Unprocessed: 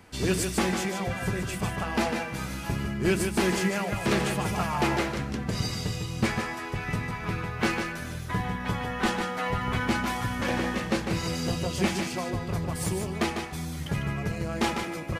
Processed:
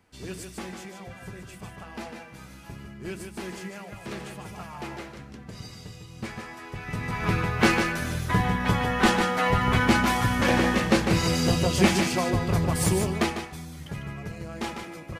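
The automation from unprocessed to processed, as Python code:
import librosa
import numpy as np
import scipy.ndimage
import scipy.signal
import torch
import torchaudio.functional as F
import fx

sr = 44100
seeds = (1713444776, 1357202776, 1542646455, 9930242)

y = fx.gain(x, sr, db=fx.line((6.06, -11.5), (6.91, -3.5), (7.23, 6.0), (13.04, 6.0), (13.66, -6.0)))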